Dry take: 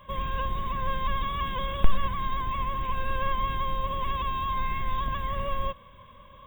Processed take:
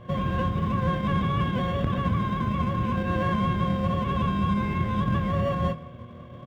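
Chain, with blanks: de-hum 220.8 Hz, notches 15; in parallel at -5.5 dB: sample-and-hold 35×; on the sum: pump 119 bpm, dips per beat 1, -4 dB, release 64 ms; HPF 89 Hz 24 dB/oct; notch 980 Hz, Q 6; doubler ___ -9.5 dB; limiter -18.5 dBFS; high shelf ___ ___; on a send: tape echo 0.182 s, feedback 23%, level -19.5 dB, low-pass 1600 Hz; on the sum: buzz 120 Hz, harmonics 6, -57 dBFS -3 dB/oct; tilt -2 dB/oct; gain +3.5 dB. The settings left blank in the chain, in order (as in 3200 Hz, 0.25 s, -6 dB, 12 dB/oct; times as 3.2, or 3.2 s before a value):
25 ms, 6300 Hz, -12 dB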